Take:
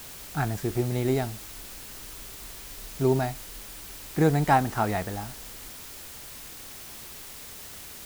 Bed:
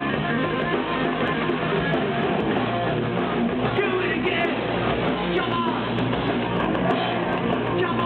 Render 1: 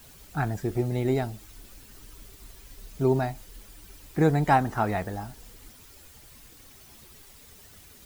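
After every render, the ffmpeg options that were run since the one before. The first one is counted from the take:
ffmpeg -i in.wav -af "afftdn=noise_reduction=11:noise_floor=-43" out.wav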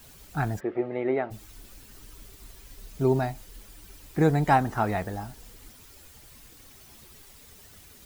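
ffmpeg -i in.wav -filter_complex "[0:a]asplit=3[link_01][link_02][link_03];[link_01]afade=type=out:start_time=0.59:duration=0.02[link_04];[link_02]highpass=310,equalizer=frequency=330:width_type=q:width=4:gain=3,equalizer=frequency=550:width_type=q:width=4:gain=7,equalizer=frequency=1200:width_type=q:width=4:gain=5,equalizer=frequency=2000:width_type=q:width=4:gain=4,lowpass=frequency=2600:width=0.5412,lowpass=frequency=2600:width=1.3066,afade=type=in:start_time=0.59:duration=0.02,afade=type=out:start_time=1.3:duration=0.02[link_05];[link_03]afade=type=in:start_time=1.3:duration=0.02[link_06];[link_04][link_05][link_06]amix=inputs=3:normalize=0" out.wav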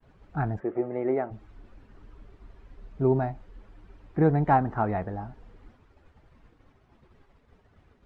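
ffmpeg -i in.wav -af "lowpass=1400,agate=range=-33dB:threshold=-51dB:ratio=3:detection=peak" out.wav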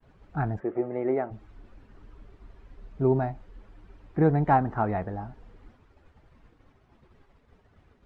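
ffmpeg -i in.wav -af anull out.wav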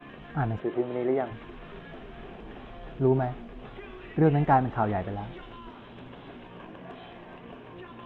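ffmpeg -i in.wav -i bed.wav -filter_complex "[1:a]volume=-22dB[link_01];[0:a][link_01]amix=inputs=2:normalize=0" out.wav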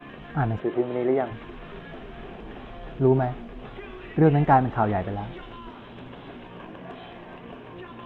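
ffmpeg -i in.wav -af "volume=3.5dB" out.wav

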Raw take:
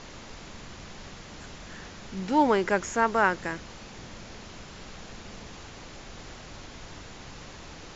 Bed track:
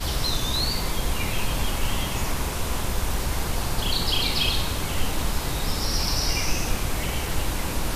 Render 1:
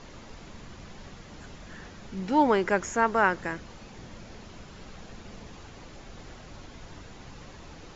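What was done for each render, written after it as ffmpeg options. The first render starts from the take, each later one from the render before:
ffmpeg -i in.wav -af "afftdn=noise_reduction=6:noise_floor=-45" out.wav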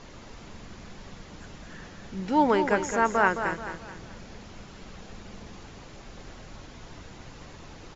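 ffmpeg -i in.wav -af "aecho=1:1:215|430|645|860:0.398|0.155|0.0606|0.0236" out.wav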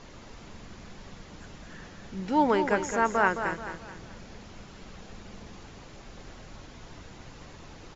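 ffmpeg -i in.wav -af "volume=-1.5dB" out.wav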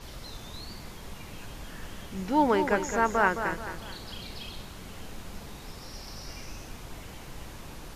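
ffmpeg -i in.wav -i bed.wav -filter_complex "[1:a]volume=-19dB[link_01];[0:a][link_01]amix=inputs=2:normalize=0" out.wav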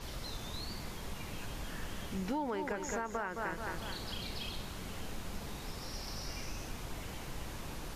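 ffmpeg -i in.wav -af "alimiter=limit=-21dB:level=0:latency=1:release=289,acompressor=threshold=-34dB:ratio=3" out.wav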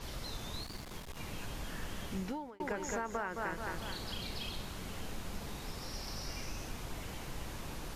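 ffmpeg -i in.wav -filter_complex "[0:a]asettb=1/sr,asplit=3[link_01][link_02][link_03];[link_01]atrim=end=0.634[link_04];[link_02]atrim=start=0.63:end=1.17,asetpts=PTS-STARTPTS,afade=type=in:duration=0.004:curve=qsin,afade=type=out:start_time=0.536:duration=0.004:curve=qsin,aeval=exprs='clip(val(0),-1,0.00473)':channel_layout=same[link_05];[link_03]atrim=start=1.166[link_06];[link_04][link_05]acrossfade=duration=0.004:curve1=hsin:curve2=qsin[link_07];[link_07][link_06]acrossfade=duration=0.004:curve1=qsin:curve2=hsin,asplit=2[link_08][link_09];[link_08]atrim=end=2.6,asetpts=PTS-STARTPTS,afade=type=out:start_time=2.17:duration=0.43[link_10];[link_09]atrim=start=2.6,asetpts=PTS-STARTPTS,afade=type=in:duration=0.004:curve=hsin[link_11];[link_10][link_11]concat=n=2:v=0:a=1" out.wav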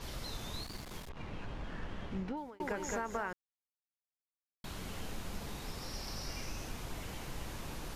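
ffmpeg -i in.wav -filter_complex "[0:a]asplit=3[link_01][link_02][link_03];[link_01]afade=type=out:start_time=1.08:duration=0.02[link_04];[link_02]adynamicsmooth=sensitivity=7:basefreq=2300,afade=type=in:start_time=1.08:duration=0.02,afade=type=out:start_time=2.36:duration=0.02[link_05];[link_03]afade=type=in:start_time=2.36:duration=0.02[link_06];[link_04][link_05][link_06]amix=inputs=3:normalize=0,asplit=3[link_07][link_08][link_09];[link_07]atrim=end=3.33,asetpts=PTS-STARTPTS,afade=type=out:start_time=3.326:duration=0.004:curve=hsin[link_10];[link_08]atrim=start=3.33:end=4.64,asetpts=PTS-STARTPTS,volume=0[link_11];[link_09]atrim=start=4.64,asetpts=PTS-STARTPTS,afade=type=in:duration=0.004:curve=hsin[link_12];[link_10][link_11][link_12]concat=n=3:v=0:a=1" out.wav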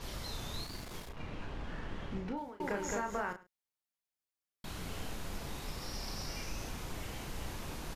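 ffmpeg -i in.wav -filter_complex "[0:a]asplit=2[link_01][link_02];[link_02]adelay=34,volume=-6dB[link_03];[link_01][link_03]amix=inputs=2:normalize=0,asplit=2[link_04][link_05];[link_05]adelay=105,volume=-19dB,highshelf=frequency=4000:gain=-2.36[link_06];[link_04][link_06]amix=inputs=2:normalize=0" out.wav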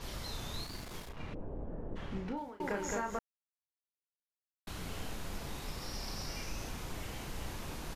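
ffmpeg -i in.wav -filter_complex "[0:a]asplit=3[link_01][link_02][link_03];[link_01]afade=type=out:start_time=1.33:duration=0.02[link_04];[link_02]lowpass=frequency=540:width_type=q:width=1.7,afade=type=in:start_time=1.33:duration=0.02,afade=type=out:start_time=1.95:duration=0.02[link_05];[link_03]afade=type=in:start_time=1.95:duration=0.02[link_06];[link_04][link_05][link_06]amix=inputs=3:normalize=0,asplit=3[link_07][link_08][link_09];[link_07]atrim=end=3.19,asetpts=PTS-STARTPTS,afade=type=out:start_time=3.186:duration=0.004:curve=hsin[link_10];[link_08]atrim=start=3.19:end=4.67,asetpts=PTS-STARTPTS,volume=0[link_11];[link_09]atrim=start=4.67,asetpts=PTS-STARTPTS,afade=type=in:duration=0.004:curve=hsin[link_12];[link_10][link_11][link_12]concat=n=3:v=0:a=1" out.wav

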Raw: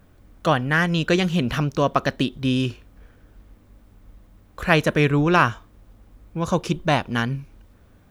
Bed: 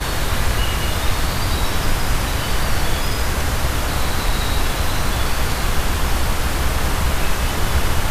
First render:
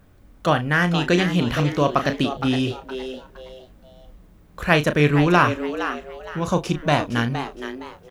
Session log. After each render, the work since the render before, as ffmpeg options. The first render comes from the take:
ffmpeg -i in.wav -filter_complex "[0:a]asplit=2[link_01][link_02];[link_02]adelay=34,volume=-9.5dB[link_03];[link_01][link_03]amix=inputs=2:normalize=0,asplit=2[link_04][link_05];[link_05]asplit=3[link_06][link_07][link_08];[link_06]adelay=465,afreqshift=130,volume=-10dB[link_09];[link_07]adelay=930,afreqshift=260,volume=-20.2dB[link_10];[link_08]adelay=1395,afreqshift=390,volume=-30.3dB[link_11];[link_09][link_10][link_11]amix=inputs=3:normalize=0[link_12];[link_04][link_12]amix=inputs=2:normalize=0" out.wav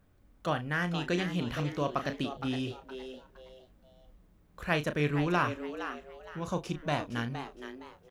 ffmpeg -i in.wav -af "volume=-12dB" out.wav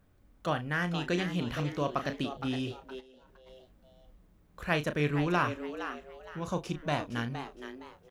ffmpeg -i in.wav -filter_complex "[0:a]asplit=3[link_01][link_02][link_03];[link_01]afade=type=out:start_time=2.99:duration=0.02[link_04];[link_02]acompressor=threshold=-53dB:ratio=12:attack=3.2:release=140:knee=1:detection=peak,afade=type=in:start_time=2.99:duration=0.02,afade=type=out:start_time=3.46:duration=0.02[link_05];[link_03]afade=type=in:start_time=3.46:duration=0.02[link_06];[link_04][link_05][link_06]amix=inputs=3:normalize=0" out.wav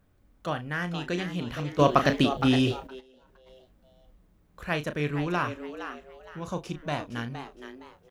ffmpeg -i in.wav -filter_complex "[0:a]asplit=3[link_01][link_02][link_03];[link_01]atrim=end=1.792[link_04];[link_02]atrim=start=1.788:end=2.872,asetpts=PTS-STARTPTS,volume=11dB[link_05];[link_03]atrim=start=2.868[link_06];[link_04][link_05]acrossfade=duration=0.004:curve1=hsin:curve2=hsin[link_07];[link_07][link_06]acrossfade=duration=0.004:curve1=hsin:curve2=hsin" out.wav

